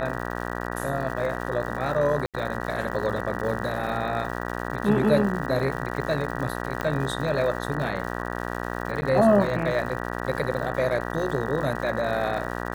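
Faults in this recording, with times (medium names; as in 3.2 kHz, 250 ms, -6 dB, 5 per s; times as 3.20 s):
buzz 60 Hz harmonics 32 -31 dBFS
crackle 220 per s -34 dBFS
2.26–2.34 s: dropout 77 ms
6.81 s: pop -14 dBFS
9.01–9.02 s: dropout 10 ms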